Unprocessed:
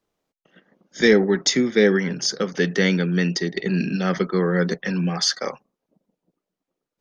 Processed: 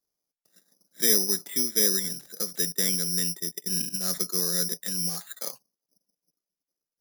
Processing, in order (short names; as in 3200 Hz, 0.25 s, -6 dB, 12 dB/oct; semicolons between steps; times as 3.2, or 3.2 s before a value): 2.72–4.13 gate -24 dBFS, range -17 dB; careless resampling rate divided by 8×, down filtered, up zero stuff; gain -15.5 dB